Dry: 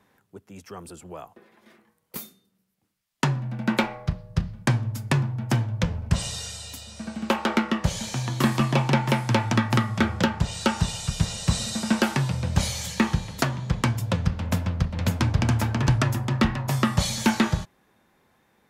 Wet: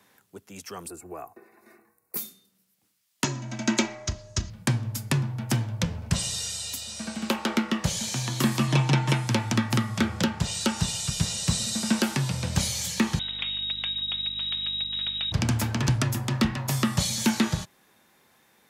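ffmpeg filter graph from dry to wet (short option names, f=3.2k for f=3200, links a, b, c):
-filter_complex "[0:a]asettb=1/sr,asplit=3[a][b][c];[a]atrim=end=0.884[d];[b]atrim=start=0.88:end=2.17,asetpts=PTS-STARTPTS,afade=t=in:d=0.004:c=qsin,afade=t=out:st=1.286:d=0.004:c=qsin,asuperstop=centerf=3200:order=4:qfactor=2.8,equalizer=f=4.8k:t=o:w=2.1:g=-12.5,aecho=1:1:2.7:0.5,atrim=end_sample=56889[e];[c]atrim=start=2.166[f];[d][e]acrossfade=d=0.004:c1=hsin:c2=qsin[g];[g][f]acrossfade=d=0.004:c1=qsin:c2=hsin,asettb=1/sr,asplit=3[h][i][j];[h]atrim=end=3.244[k];[i]atrim=start=3.24:end=4.5,asetpts=PTS-STARTPTS,afade=t=in:d=0.004:c=qsin,afade=t=out:st=1.256:d=0.004:c=qsin,lowpass=f=6.6k:t=q:w=6.3,aecho=1:1:3.1:0.88,atrim=end_sample=55566[l];[j]atrim=start=4.496[m];[k][l]acrossfade=d=0.004:c1=hsin:c2=qsin[n];[n][m]acrossfade=d=0.004:c1=qsin:c2=hsin,asettb=1/sr,asplit=3[o][p][q];[o]atrim=end=8.674[r];[p]atrim=start=8.67:end=9.27,asetpts=PTS-STARTPTS,afade=t=in:d=0.004:c=qsin,afade=t=out:st=0.596:d=0.004:c=qsin,lowpass=8.6k,bandreject=f=4.6k:w=16,aecho=1:1:6.5:0.75,atrim=end_sample=26460[s];[q]atrim=start=9.266[t];[r][s]acrossfade=d=0.004:c1=hsin:c2=qsin[u];[u][t]acrossfade=d=0.004:c1=qsin:c2=hsin,asettb=1/sr,asplit=3[v][w][x];[v]atrim=end=13.194[y];[w]atrim=start=13.19:end=15.32,asetpts=PTS-STARTPTS,afade=t=in:d=0.004:c=qsin,afade=t=out:st=2.126:d=0.004:c=qsin,lowpass=f=3.3k:t=q:w=0.5098,lowpass=f=3.3k:t=q:w=0.6013,lowpass=f=3.3k:t=q:w=0.9,lowpass=f=3.3k:t=q:w=2.563,afreqshift=-3900,acompressor=threshold=-30dB:ratio=3:attack=3.2:release=140:knee=1:detection=peak,aeval=exprs='val(0)+0.00891*(sin(2*PI*50*n/s)+sin(2*PI*2*50*n/s)/2+sin(2*PI*3*50*n/s)/3+sin(2*PI*4*50*n/s)/4+sin(2*PI*5*50*n/s)/5)':c=same[z];[x]atrim=start=15.316[aa];[y][z]acrossfade=d=0.004:c1=hsin:c2=qsin[ab];[ab][aa]acrossfade=d=0.004:c1=qsin:c2=hsin,highpass=f=120:p=1,highshelf=f=2.5k:g=10.5,acrossover=split=380[ac][ad];[ad]acompressor=threshold=-32dB:ratio=2[ae];[ac][ae]amix=inputs=2:normalize=0"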